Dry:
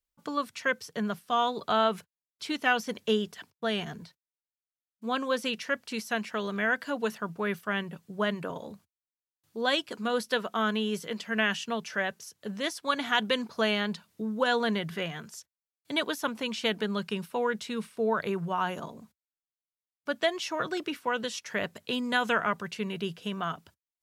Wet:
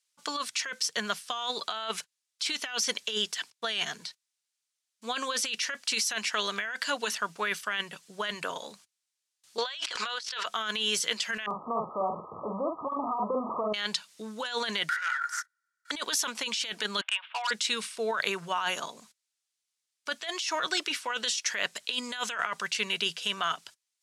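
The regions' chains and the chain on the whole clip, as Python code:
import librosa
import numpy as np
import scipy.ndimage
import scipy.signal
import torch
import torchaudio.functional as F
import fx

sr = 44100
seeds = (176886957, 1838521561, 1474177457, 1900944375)

y = fx.chain(x, sr, fx.bandpass_edges(low_hz=760.0, high_hz=4600.0),
    fx.env_flatten(amount_pct=100), at=(9.58, 10.46))
y = fx.chain(y, sr, fx.zero_step(step_db=-28.0),
    fx.brickwall_lowpass(high_hz=1300.0),
    fx.doubler(ms=47.0, db=-4.5), at=(11.46, 13.74))
y = fx.chain(y, sr, fx.lower_of_two(delay_ms=2.1),
    fx.highpass_res(hz=1400.0, q=15.0),
    fx.high_shelf_res(hz=2200.0, db=-6.0, q=3.0), at=(14.89, 15.91))
y = fx.chain(y, sr, fx.cheby1_bandpass(low_hz=640.0, high_hz=3400.0, order=5),
    fx.overload_stage(gain_db=32.5), at=(17.01, 17.51))
y = fx.weighting(y, sr, curve='ITU-R 468')
y = fx.over_compress(y, sr, threshold_db=-31.0, ratio=-1.0)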